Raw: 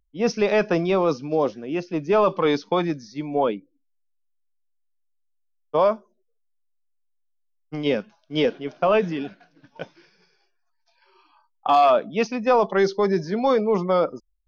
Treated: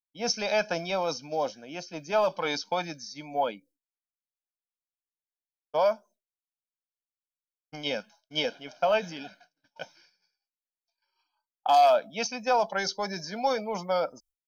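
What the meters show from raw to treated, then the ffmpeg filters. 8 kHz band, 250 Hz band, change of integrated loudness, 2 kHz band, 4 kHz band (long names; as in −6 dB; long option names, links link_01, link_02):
can't be measured, −13.5 dB, −6.0 dB, −3.0 dB, +1.0 dB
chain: -af "bass=frequency=250:gain=-11,treble=frequency=4000:gain=14,agate=range=-33dB:threshold=-46dB:ratio=3:detection=peak,aecho=1:1:1.3:0.72,volume=-6.5dB"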